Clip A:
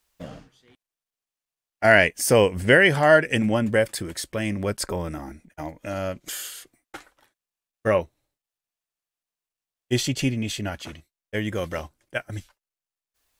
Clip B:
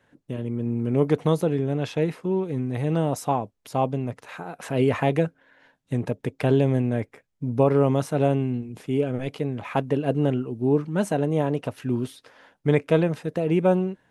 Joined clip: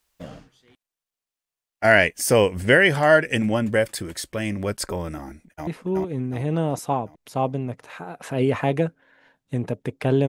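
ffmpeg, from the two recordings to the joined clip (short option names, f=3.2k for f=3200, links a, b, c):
-filter_complex "[0:a]apad=whole_dur=10.28,atrim=end=10.28,atrim=end=5.672[a];[1:a]atrim=start=2.058:end=6.67[b];[a][b]acrossfade=d=0.004:c1=hsin:c2=hsin,asplit=2[c][d];[d]afade=t=in:st=5.39:d=0.01,afade=t=out:st=5.67:d=0.01,aecho=0:1:370|740|1110|1480|1850|2220|2590:0.841395|0.420698|0.210349|0.105174|0.0525872|0.0262936|0.0131468[e];[c][e]amix=inputs=2:normalize=0"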